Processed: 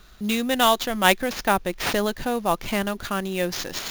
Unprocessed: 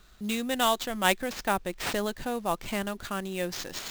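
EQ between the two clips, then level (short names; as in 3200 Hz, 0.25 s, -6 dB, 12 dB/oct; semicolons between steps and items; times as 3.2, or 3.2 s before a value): notch 7900 Hz, Q 5.4; +6.5 dB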